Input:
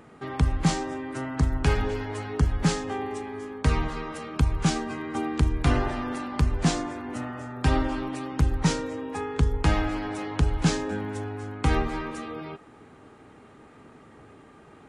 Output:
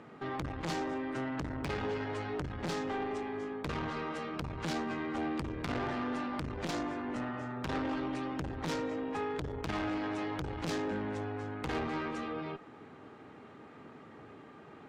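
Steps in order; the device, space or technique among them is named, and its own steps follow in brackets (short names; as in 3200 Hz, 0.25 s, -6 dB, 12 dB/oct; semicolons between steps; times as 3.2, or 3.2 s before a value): valve radio (BPF 110–4800 Hz; tube stage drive 29 dB, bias 0.35; core saturation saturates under 230 Hz)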